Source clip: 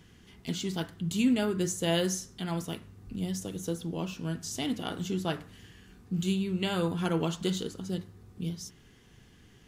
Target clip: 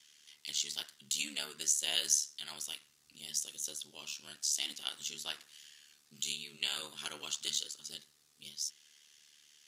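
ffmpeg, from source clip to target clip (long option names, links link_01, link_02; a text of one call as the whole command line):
ffmpeg -i in.wav -af "aeval=exprs='val(0)*sin(2*PI*37*n/s)':channel_layout=same,bandpass=frequency=4500:width_type=q:width=0.91:csg=0,crystalizer=i=3.5:c=0" out.wav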